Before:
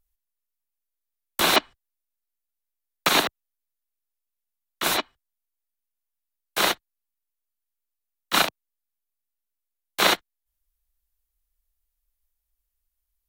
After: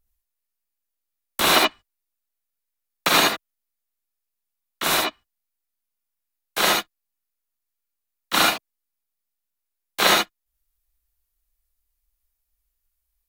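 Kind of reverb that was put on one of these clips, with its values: gated-style reverb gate 100 ms rising, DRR -0.5 dB

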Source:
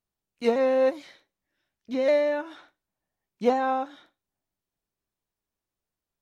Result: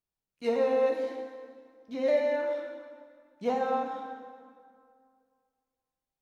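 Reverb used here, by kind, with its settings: plate-style reverb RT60 2.1 s, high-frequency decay 0.7×, DRR 0.5 dB; trim -7.5 dB

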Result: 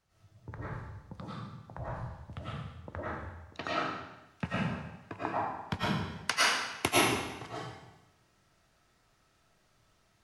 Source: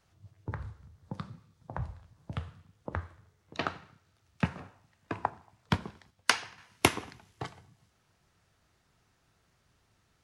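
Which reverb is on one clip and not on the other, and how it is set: algorithmic reverb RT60 0.97 s, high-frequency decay 0.95×, pre-delay 70 ms, DRR -9.5 dB; trim -7.5 dB

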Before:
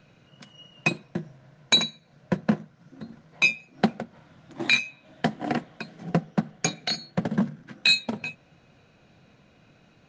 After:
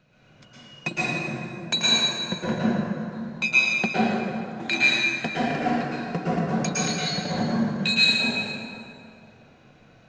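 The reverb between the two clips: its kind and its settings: plate-style reverb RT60 2.5 s, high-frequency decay 0.6×, pre-delay 100 ms, DRR -9.5 dB; trim -6 dB

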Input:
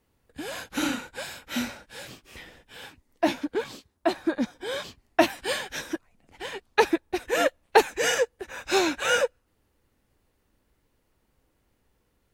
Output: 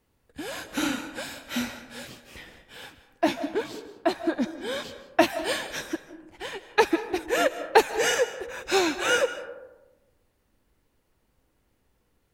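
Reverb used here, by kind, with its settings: algorithmic reverb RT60 1.1 s, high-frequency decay 0.35×, pre-delay 115 ms, DRR 12.5 dB

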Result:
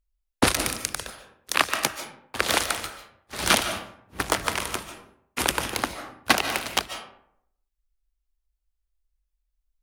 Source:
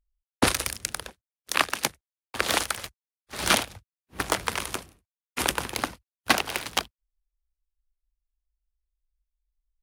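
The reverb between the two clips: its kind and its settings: algorithmic reverb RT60 0.7 s, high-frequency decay 0.55×, pre-delay 105 ms, DRR 8.5 dB; trim +1.5 dB

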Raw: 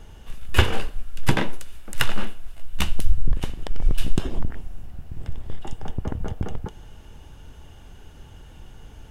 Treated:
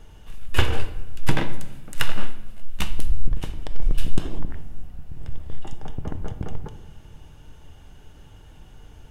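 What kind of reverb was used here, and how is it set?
simulated room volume 610 m³, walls mixed, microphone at 0.45 m; trim -3 dB

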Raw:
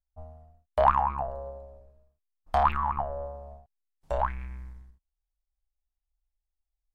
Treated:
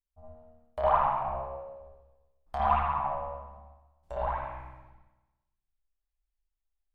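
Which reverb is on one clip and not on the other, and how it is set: spring tank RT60 1.1 s, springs 55/60 ms, chirp 30 ms, DRR -7.5 dB; trim -10 dB

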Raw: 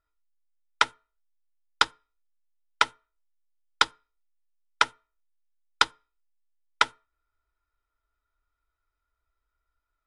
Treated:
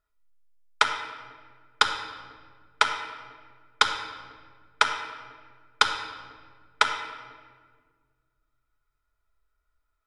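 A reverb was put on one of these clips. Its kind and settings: simulated room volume 2100 m³, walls mixed, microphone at 1.4 m

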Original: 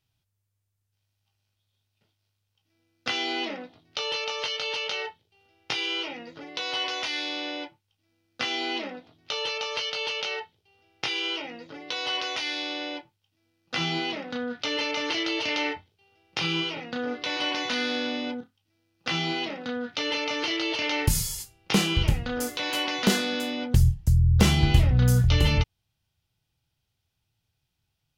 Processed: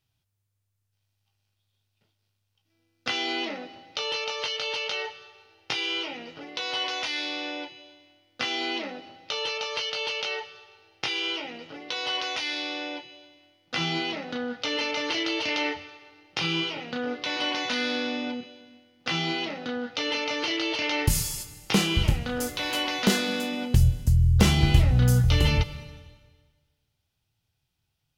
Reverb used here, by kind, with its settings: algorithmic reverb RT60 1.5 s, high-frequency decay 1×, pre-delay 95 ms, DRR 15.5 dB

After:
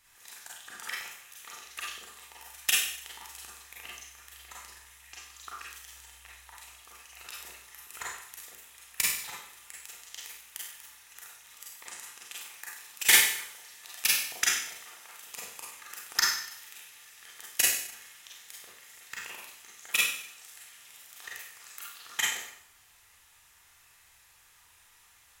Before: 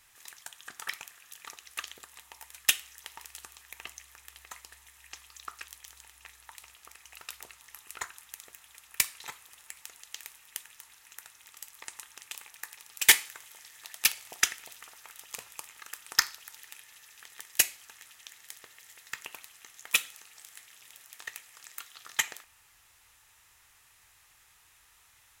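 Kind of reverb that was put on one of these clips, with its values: Schroeder reverb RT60 0.64 s, combs from 32 ms, DRR -5 dB; trim -4.5 dB

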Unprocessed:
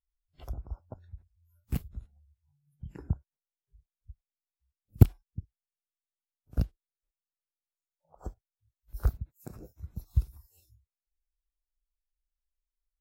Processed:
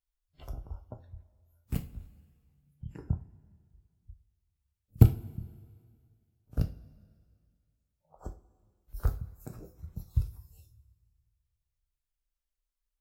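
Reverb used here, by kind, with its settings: two-slope reverb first 0.29 s, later 2.1 s, from -20 dB, DRR 5.5 dB; trim -1 dB

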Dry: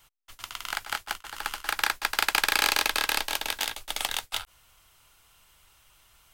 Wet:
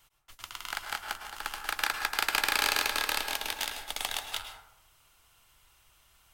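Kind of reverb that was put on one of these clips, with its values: plate-style reverb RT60 0.74 s, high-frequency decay 0.45×, pre-delay 95 ms, DRR 6 dB; trim -4 dB

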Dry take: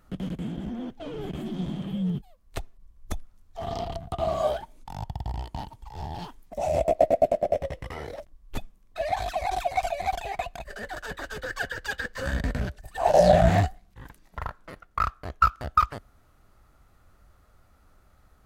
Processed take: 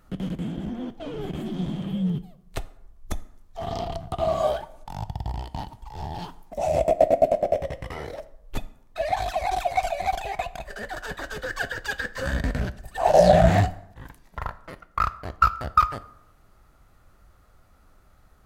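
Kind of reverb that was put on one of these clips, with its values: plate-style reverb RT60 0.79 s, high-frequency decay 0.6×, DRR 14 dB; trim +2 dB

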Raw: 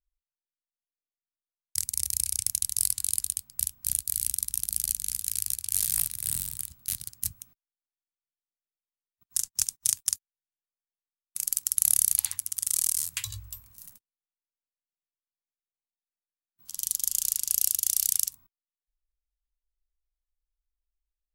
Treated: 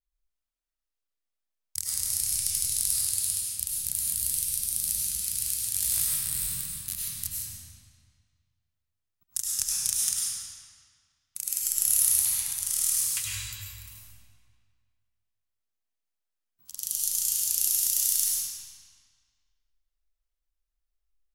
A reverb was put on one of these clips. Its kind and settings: algorithmic reverb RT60 1.9 s, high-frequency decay 0.85×, pre-delay 60 ms, DRR -5.5 dB; trim -3.5 dB

